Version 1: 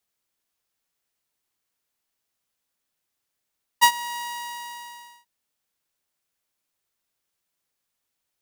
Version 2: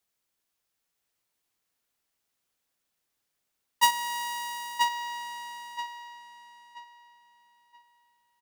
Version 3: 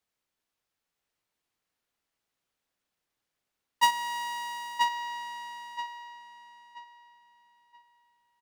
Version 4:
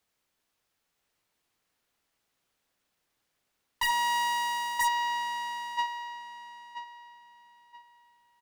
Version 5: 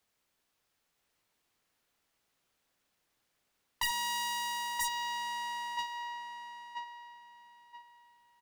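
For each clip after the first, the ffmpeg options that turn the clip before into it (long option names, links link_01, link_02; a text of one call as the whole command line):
ffmpeg -i in.wav -filter_complex "[0:a]asplit=2[link_01][link_02];[link_02]aeval=exprs='0.0794*(abs(mod(val(0)/0.0794+3,4)-2)-1)':channel_layout=same,volume=-5.5dB[link_03];[link_01][link_03]amix=inputs=2:normalize=0,asplit=2[link_04][link_05];[link_05]adelay=979,lowpass=frequency=4900:poles=1,volume=-4dB,asplit=2[link_06][link_07];[link_07]adelay=979,lowpass=frequency=4900:poles=1,volume=0.29,asplit=2[link_08][link_09];[link_09]adelay=979,lowpass=frequency=4900:poles=1,volume=0.29,asplit=2[link_10][link_11];[link_11]adelay=979,lowpass=frequency=4900:poles=1,volume=0.29[link_12];[link_04][link_06][link_08][link_10][link_12]amix=inputs=5:normalize=0,volume=-4.5dB" out.wav
ffmpeg -i in.wav -af "highshelf=frequency=5800:gain=-9.5" out.wav
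ffmpeg -i in.wav -af "aeval=exprs='0.0473*(abs(mod(val(0)/0.0473+3,4)-2)-1)':channel_layout=same,volume=6dB" out.wav
ffmpeg -i in.wav -filter_complex "[0:a]acrossover=split=280|3000[link_01][link_02][link_03];[link_02]acompressor=threshold=-35dB:ratio=6[link_04];[link_01][link_04][link_03]amix=inputs=3:normalize=0" out.wav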